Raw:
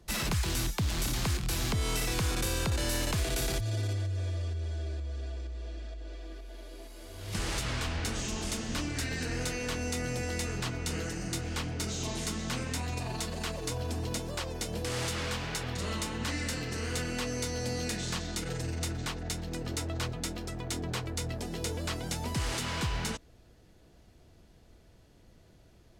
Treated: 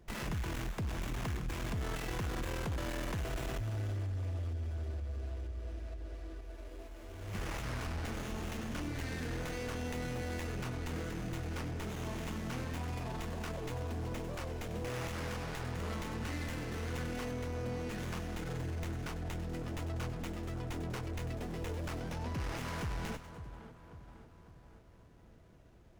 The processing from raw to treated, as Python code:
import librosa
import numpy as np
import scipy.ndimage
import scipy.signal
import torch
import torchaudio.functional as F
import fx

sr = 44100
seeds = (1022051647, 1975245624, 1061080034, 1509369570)

y = fx.high_shelf(x, sr, hz=3200.0, db=-11.0, at=(17.31, 17.91))
y = fx.steep_lowpass(y, sr, hz=6100.0, slope=36, at=(22.0, 22.57))
y = fx.echo_split(y, sr, split_hz=1700.0, low_ms=550, high_ms=98, feedback_pct=52, wet_db=-14.5)
y = 10.0 ** (-30.5 / 20.0) * np.tanh(y / 10.0 ** (-30.5 / 20.0))
y = fx.notch(y, sr, hz=4000.0, q=5.5)
y = fx.running_max(y, sr, window=9)
y = y * 10.0 ** (-1.5 / 20.0)